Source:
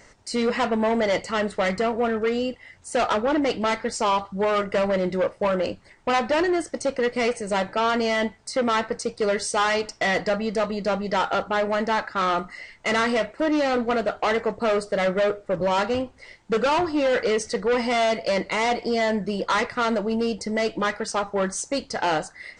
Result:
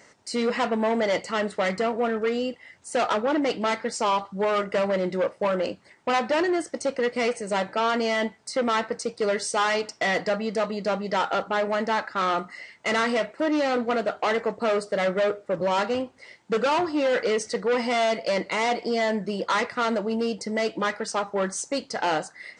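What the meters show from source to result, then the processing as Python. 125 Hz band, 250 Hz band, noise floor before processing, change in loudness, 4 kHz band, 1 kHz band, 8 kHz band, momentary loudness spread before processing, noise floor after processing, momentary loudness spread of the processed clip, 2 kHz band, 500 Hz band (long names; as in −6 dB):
−3.0 dB, −2.0 dB, −53 dBFS, −1.5 dB, −1.5 dB, −1.5 dB, −1.5 dB, 5 LU, −55 dBFS, 5 LU, −1.5 dB, −1.5 dB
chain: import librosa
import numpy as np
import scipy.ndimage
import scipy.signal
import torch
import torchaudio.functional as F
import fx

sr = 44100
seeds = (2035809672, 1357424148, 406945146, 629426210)

y = scipy.signal.sosfilt(scipy.signal.butter(2, 150.0, 'highpass', fs=sr, output='sos'), x)
y = y * librosa.db_to_amplitude(-1.5)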